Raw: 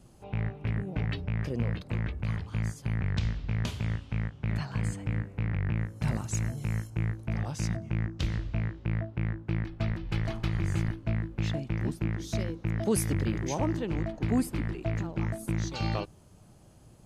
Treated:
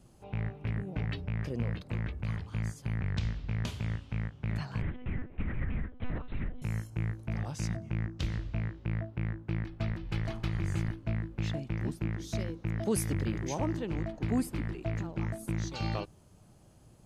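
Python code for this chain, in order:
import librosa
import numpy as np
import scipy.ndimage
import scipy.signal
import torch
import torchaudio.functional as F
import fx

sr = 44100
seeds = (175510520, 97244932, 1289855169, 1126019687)

y = fx.lpc_monotone(x, sr, seeds[0], pitch_hz=250.0, order=10, at=(4.82, 6.62))
y = y * librosa.db_to_amplitude(-3.0)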